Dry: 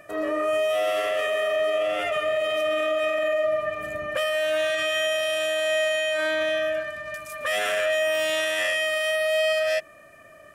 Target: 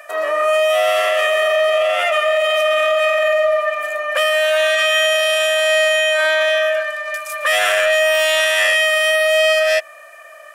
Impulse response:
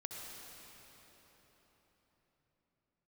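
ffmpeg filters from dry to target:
-filter_complex "[0:a]highpass=frequency=620:width=0.5412,highpass=frequency=620:width=1.3066,asplit=2[link_01][link_02];[link_02]asoftclip=type=hard:threshold=-23dB,volume=-10.5dB[link_03];[link_01][link_03]amix=inputs=2:normalize=0,volume=8.5dB"

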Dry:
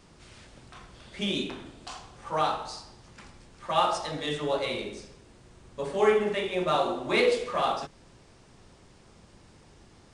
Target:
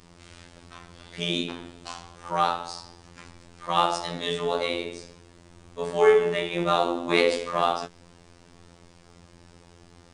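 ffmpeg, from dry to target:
ffmpeg -i in.wav -af "afftfilt=real='hypot(re,im)*cos(PI*b)':imag='0':win_size=2048:overlap=0.75,volume=6dB" out.wav

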